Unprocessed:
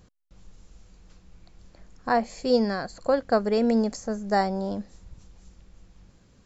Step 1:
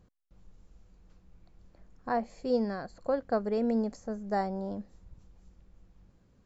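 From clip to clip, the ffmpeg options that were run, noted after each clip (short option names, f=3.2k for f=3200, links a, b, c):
-af "highshelf=f=2.1k:g=-10,volume=-6dB"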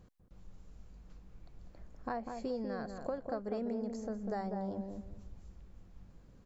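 -filter_complex "[0:a]acompressor=threshold=-39dB:ratio=5,asplit=2[a][b];[b]adelay=197,lowpass=f=950:p=1,volume=-4dB,asplit=2[c][d];[d]adelay=197,lowpass=f=950:p=1,volume=0.28,asplit=2[e][f];[f]adelay=197,lowpass=f=950:p=1,volume=0.28,asplit=2[g][h];[h]adelay=197,lowpass=f=950:p=1,volume=0.28[i];[c][e][g][i]amix=inputs=4:normalize=0[j];[a][j]amix=inputs=2:normalize=0,volume=2.5dB"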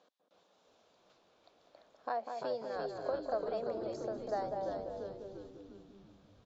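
-filter_complex "[0:a]highpass=f=350:w=0.5412,highpass=f=350:w=1.3066,equalizer=f=370:t=q:w=4:g=-9,equalizer=f=640:t=q:w=4:g=6,equalizer=f=2k:t=q:w=4:g=-5,equalizer=f=3.6k:t=q:w=4:g=8,lowpass=f=6.3k:w=0.5412,lowpass=f=6.3k:w=1.3066,asplit=8[a][b][c][d][e][f][g][h];[b]adelay=342,afreqshift=-96,volume=-5dB[i];[c]adelay=684,afreqshift=-192,volume=-10.5dB[j];[d]adelay=1026,afreqshift=-288,volume=-16dB[k];[e]adelay=1368,afreqshift=-384,volume=-21.5dB[l];[f]adelay=1710,afreqshift=-480,volume=-27.1dB[m];[g]adelay=2052,afreqshift=-576,volume=-32.6dB[n];[h]adelay=2394,afreqshift=-672,volume=-38.1dB[o];[a][i][j][k][l][m][n][o]amix=inputs=8:normalize=0,volume=1dB"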